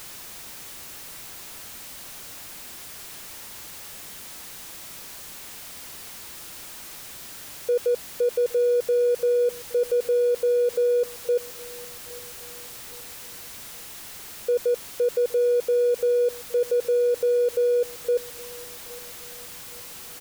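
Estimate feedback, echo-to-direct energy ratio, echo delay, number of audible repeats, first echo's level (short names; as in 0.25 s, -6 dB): 40%, -21.0 dB, 0.816 s, 2, -21.5 dB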